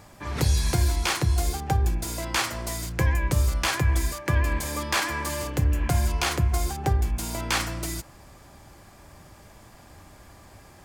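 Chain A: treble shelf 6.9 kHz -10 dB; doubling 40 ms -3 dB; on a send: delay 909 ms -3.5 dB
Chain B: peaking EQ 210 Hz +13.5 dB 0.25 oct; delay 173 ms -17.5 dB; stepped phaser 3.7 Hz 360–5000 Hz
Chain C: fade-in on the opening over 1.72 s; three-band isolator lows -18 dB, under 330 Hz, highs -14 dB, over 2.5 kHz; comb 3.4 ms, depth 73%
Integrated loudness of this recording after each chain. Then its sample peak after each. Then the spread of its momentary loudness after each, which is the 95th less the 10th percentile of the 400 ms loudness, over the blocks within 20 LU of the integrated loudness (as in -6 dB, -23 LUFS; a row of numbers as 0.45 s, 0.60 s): -23.5 LUFS, -27.5 LUFS, -32.0 LUFS; -8.0 dBFS, -11.5 dBFS, -14.0 dBFS; 8 LU, 7 LU, 11 LU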